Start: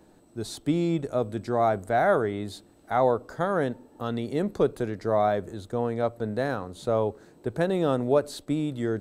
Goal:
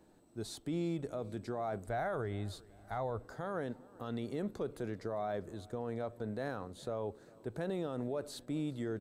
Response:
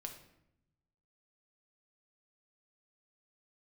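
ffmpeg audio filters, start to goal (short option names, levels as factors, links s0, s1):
-filter_complex "[0:a]asplit=3[s0][s1][s2];[s0]afade=t=out:st=1.86:d=0.02[s3];[s1]asubboost=boost=6.5:cutoff=110,afade=t=in:st=1.86:d=0.02,afade=t=out:st=3.24:d=0.02[s4];[s2]afade=t=in:st=3.24:d=0.02[s5];[s3][s4][s5]amix=inputs=3:normalize=0,alimiter=limit=0.0944:level=0:latency=1:release=35,asplit=2[s6][s7];[s7]aecho=0:1:397|794|1191:0.0668|0.0348|0.0181[s8];[s6][s8]amix=inputs=2:normalize=0,volume=0.398"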